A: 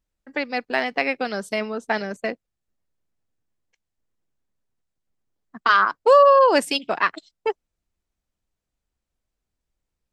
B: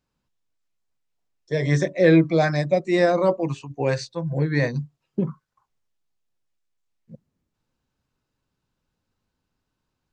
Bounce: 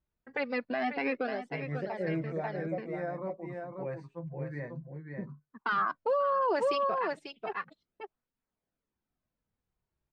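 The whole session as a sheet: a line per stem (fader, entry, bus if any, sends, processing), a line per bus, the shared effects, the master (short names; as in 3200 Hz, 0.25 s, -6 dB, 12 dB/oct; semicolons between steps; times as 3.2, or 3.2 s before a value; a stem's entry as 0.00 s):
+0.5 dB, 0.00 s, no send, echo send -12.5 dB, LPF 6900 Hz 12 dB/oct; high shelf 4500 Hz -5.5 dB; tape flanging out of phase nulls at 0.3 Hz, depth 4.1 ms; auto duck -14 dB, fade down 0.30 s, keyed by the second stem
-12.0 dB, 0.00 s, no send, echo send -4.5 dB, flange 0.37 Hz, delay 3.9 ms, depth 2.2 ms, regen +46%; band shelf 4600 Hz -15.5 dB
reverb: off
echo: echo 0.541 s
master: high shelf 3700 Hz -10 dB; limiter -21.5 dBFS, peak gain reduction 15 dB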